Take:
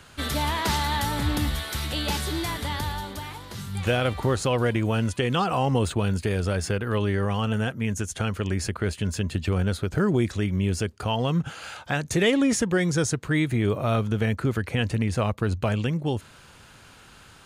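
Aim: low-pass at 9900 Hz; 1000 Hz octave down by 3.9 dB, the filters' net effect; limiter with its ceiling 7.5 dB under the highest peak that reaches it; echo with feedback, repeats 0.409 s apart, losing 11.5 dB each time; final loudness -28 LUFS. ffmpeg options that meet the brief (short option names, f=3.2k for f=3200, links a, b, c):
-af "lowpass=9.9k,equalizer=f=1k:t=o:g=-5,alimiter=limit=-18dB:level=0:latency=1,aecho=1:1:409|818|1227:0.266|0.0718|0.0194"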